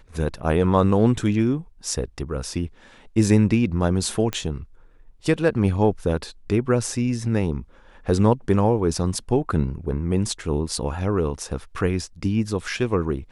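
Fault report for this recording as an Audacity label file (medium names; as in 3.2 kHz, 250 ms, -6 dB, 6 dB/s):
4.330000	4.330000	pop -11 dBFS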